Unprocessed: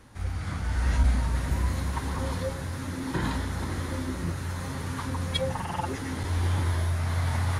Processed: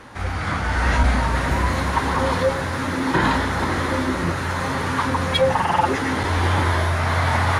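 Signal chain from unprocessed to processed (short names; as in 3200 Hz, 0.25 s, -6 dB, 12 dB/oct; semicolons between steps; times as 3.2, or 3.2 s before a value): 2.38–3.05 crackle 79/s -> 290/s -44 dBFS; overdrive pedal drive 15 dB, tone 1800 Hz, clips at -13 dBFS; gain +8.5 dB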